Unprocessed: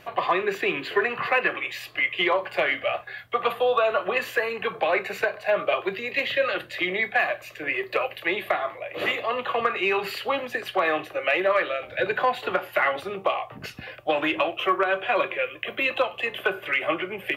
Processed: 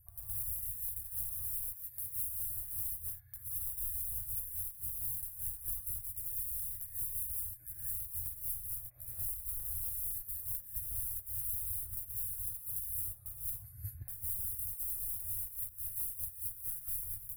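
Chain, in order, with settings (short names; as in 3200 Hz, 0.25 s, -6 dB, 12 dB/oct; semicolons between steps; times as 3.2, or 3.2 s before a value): wrapped overs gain 22 dB; inverse Chebyshev band-stop 180–6400 Hz, stop band 40 dB; 4.61–5.19 transient shaper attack -8 dB, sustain -2 dB; compressor 16:1, threshold -46 dBFS, peak gain reduction 17.5 dB; non-linear reverb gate 0.25 s rising, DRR -6 dB; gate -47 dBFS, range -6 dB; gain +7 dB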